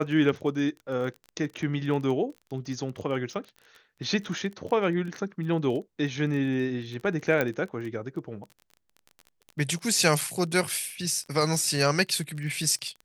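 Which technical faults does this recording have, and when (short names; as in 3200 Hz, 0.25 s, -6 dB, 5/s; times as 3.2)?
crackle 25/s -35 dBFS
7.41 pop -12 dBFS
10.21 gap 3.2 ms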